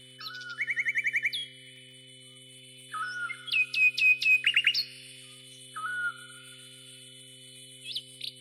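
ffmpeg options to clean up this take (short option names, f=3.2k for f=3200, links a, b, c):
-af "adeclick=t=4,bandreject=f=128.9:t=h:w=4,bandreject=f=257.8:t=h:w=4,bandreject=f=386.7:t=h:w=4,bandreject=f=515.6:t=h:w=4,bandreject=f=3k:w=30"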